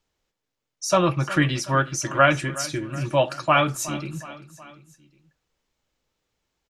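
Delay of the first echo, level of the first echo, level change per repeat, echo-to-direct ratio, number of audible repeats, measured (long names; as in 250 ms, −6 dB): 368 ms, −17.0 dB, −5.0 dB, −15.5 dB, 3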